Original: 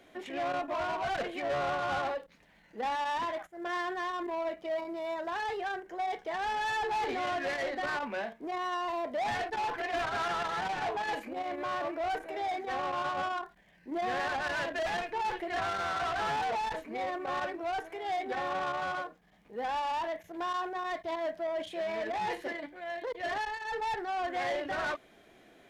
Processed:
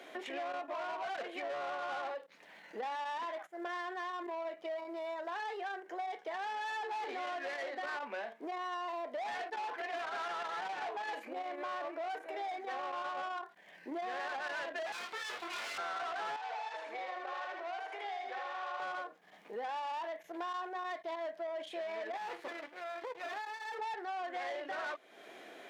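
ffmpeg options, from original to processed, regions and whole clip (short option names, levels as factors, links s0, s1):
-filter_complex "[0:a]asettb=1/sr,asplit=3[s0][s1][s2];[s0]atrim=end=14.924[s3];[s1]atrim=start=14.92:end=15.78,asetpts=PTS-STARTPTS,afade=t=in:d=0.004:c=qsin,afade=t=out:st=0.856:d=0.004:c=qsin,highpass=f=180:p=1,aeval=exprs='abs(val(0))':c=same,asplit=2[s4][s5];[s5]adelay=21,volume=0.75[s6];[s4][s6]amix=inputs=2:normalize=0,atrim=end_sample=37926[s7];[s2]atrim=start=15.776[s8];[s3][s7]acrossfade=d=0.004:c1=hsin:c2=qsin[s9];[s9][s8]acrossfade=d=0.004:c1=qsin:c2=hsin,asettb=1/sr,asplit=3[s10][s11][s12];[s10]atrim=end=16.364[s13];[s11]atrim=start=16.36:end=18.8,asetpts=PTS-STARTPTS,afade=t=in:d=0.004:c=qsin,afade=t=out:st=2.436:d=0.004:c=qsin,acompressor=threshold=0.0141:ratio=3:attack=3.2:release=140:knee=1:detection=peak,highpass=600,lowpass=6700,aecho=1:1:78|156|234|312|390:0.668|0.234|0.0819|0.0287|0.01,atrim=end_sample=107604[s14];[s12]atrim=start=18.796[s15];[s13][s14]acrossfade=d=0.004:c1=hsin:c2=qsin[s16];[s16][s15]acrossfade=d=0.004:c1=qsin:c2=hsin,asettb=1/sr,asplit=3[s17][s18][s19];[s17]atrim=end=22.174[s20];[s18]atrim=start=22.17:end=23.79,asetpts=PTS-STARTPTS,afade=t=in:d=0.004:c=qsin,afade=t=out:st=1.616:d=0.004:c=qsin,acrossover=split=2500[s21][s22];[s22]acompressor=threshold=0.00178:ratio=4:attack=1:release=60[s23];[s21][s23]amix=inputs=2:normalize=0,asplit=2[s24][s25];[s25]adelay=12,volume=0.282[s26];[s24][s26]amix=inputs=2:normalize=0,atrim=end_sample=71442,aeval=exprs='max(val(0),0)':c=same[s27];[s19]atrim=start=23.786[s28];[s20][s27]acrossfade=d=0.004:c1=hsin:c2=qsin[s29];[s29][s28]acrossfade=d=0.004:c1=qsin:c2=hsin,highpass=390,highshelf=f=6500:g=-5,acompressor=threshold=0.00282:ratio=3,volume=2.66"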